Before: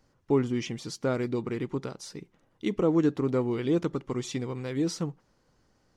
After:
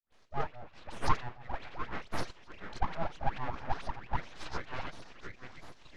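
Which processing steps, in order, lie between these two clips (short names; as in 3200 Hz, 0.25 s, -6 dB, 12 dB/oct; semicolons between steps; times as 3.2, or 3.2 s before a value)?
treble ducked by the level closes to 570 Hz, closed at -25.5 dBFS; HPF 190 Hz 12 dB/oct; band shelf 5600 Hz +14.5 dB 1.1 oct; notches 60/120/180/240 Hz; LFO high-pass saw down 4.6 Hz 450–2100 Hz; dispersion highs, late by 0.125 s, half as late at 760 Hz; on a send: delay with a stepping band-pass 0.698 s, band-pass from 860 Hz, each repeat 0.7 oct, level -3.5 dB; on the sum: full-wave rectifier; air absorption 140 m; gain +4 dB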